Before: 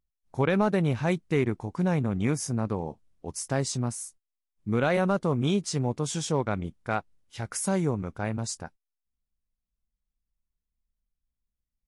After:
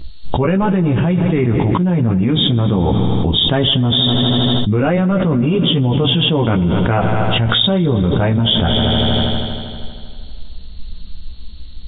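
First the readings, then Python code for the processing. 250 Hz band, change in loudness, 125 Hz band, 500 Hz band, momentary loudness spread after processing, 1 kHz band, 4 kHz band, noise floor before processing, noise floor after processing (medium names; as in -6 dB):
+14.0 dB, +13.5 dB, +15.0 dB, +10.5 dB, 4 LU, +11.5 dB, +26.5 dB, under -85 dBFS, -29 dBFS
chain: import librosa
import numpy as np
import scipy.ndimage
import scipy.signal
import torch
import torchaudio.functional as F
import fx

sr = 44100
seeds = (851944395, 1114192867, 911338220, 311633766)

p1 = fx.freq_compress(x, sr, knee_hz=2600.0, ratio=4.0)
p2 = fx.rider(p1, sr, range_db=4, speed_s=2.0)
p3 = p1 + F.gain(torch.from_numpy(p2), 2.0).numpy()
p4 = fx.chorus_voices(p3, sr, voices=6, hz=0.19, base_ms=14, depth_ms=3.5, mix_pct=45)
p5 = fx.low_shelf(p4, sr, hz=350.0, db=11.0)
p6 = fx.echo_heads(p5, sr, ms=79, heads='all three', feedback_pct=59, wet_db=-21)
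p7 = fx.env_flatten(p6, sr, amount_pct=100)
y = F.gain(torch.from_numpy(p7), -5.0).numpy()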